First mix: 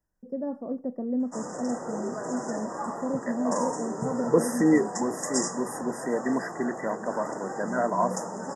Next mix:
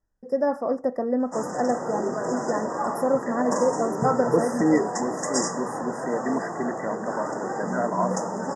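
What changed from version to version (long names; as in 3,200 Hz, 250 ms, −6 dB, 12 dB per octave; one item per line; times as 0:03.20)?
first voice: remove resonant band-pass 200 Hz, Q 1.5
background +6.0 dB
master: add high-frequency loss of the air 55 metres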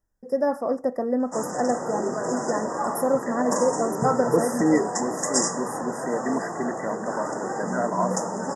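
master: remove high-frequency loss of the air 55 metres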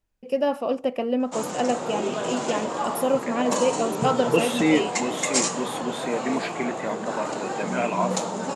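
master: remove linear-phase brick-wall band-stop 2,000–4,900 Hz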